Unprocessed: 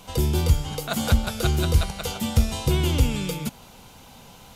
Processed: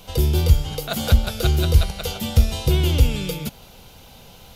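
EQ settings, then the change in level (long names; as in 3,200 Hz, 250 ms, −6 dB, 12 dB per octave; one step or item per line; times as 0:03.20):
octave-band graphic EQ 125/250/1,000/2,000/8,000 Hz −3/−7/−8/−4/−8 dB
+6.0 dB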